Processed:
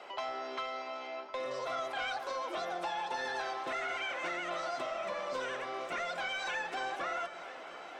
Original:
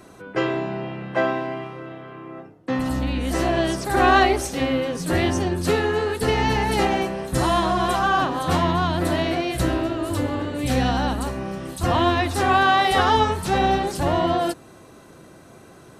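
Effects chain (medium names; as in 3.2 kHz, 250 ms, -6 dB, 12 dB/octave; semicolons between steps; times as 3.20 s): high-pass 150 Hz 12 dB/octave; three-band isolator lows -12 dB, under 200 Hz, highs -20 dB, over 3.7 kHz; band-stop 780 Hz, Q 22; compression 2.5:1, threshold -38 dBFS, peak gain reduction 16.5 dB; saturation -26 dBFS, distortion -21 dB; tape spacing loss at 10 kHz 21 dB; echo whose repeats swap between lows and highs 472 ms, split 800 Hz, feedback 86%, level -13 dB; speed mistake 7.5 ips tape played at 15 ips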